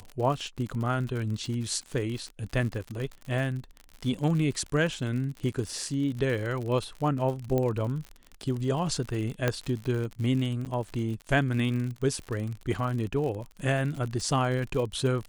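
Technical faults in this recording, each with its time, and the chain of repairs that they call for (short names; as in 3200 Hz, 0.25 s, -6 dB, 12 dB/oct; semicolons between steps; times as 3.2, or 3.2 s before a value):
crackle 59/s -33 dBFS
7.58 pop -16 dBFS
9.48 pop -11 dBFS
10.65–10.66 gap 8.3 ms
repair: de-click; interpolate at 10.65, 8.3 ms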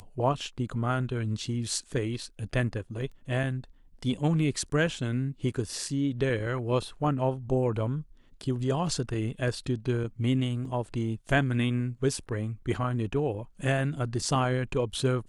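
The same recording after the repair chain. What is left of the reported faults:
9.48 pop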